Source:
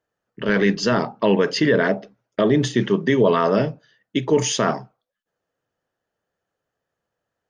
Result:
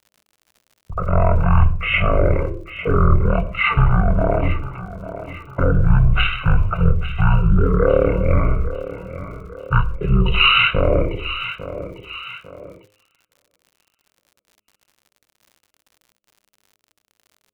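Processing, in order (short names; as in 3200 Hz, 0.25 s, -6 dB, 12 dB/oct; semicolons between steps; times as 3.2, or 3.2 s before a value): octaver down 2 oct, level +1 dB; high shelf 2000 Hz +7.5 dB; on a send: thinning echo 0.363 s, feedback 35%, high-pass 270 Hz, level -14 dB; on the sum: gate -45 dBFS, range -25 dB; in parallel at -1.5 dB: compressor, threshold -31 dBFS, peak gain reduction 19 dB; on the sum: speed mistake 78 rpm record played at 33 rpm; fixed phaser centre 1200 Hz, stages 8; crackle 87/s -44 dBFS; de-hum 103.7 Hz, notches 6; Doppler distortion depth 0.13 ms; gain +3.5 dB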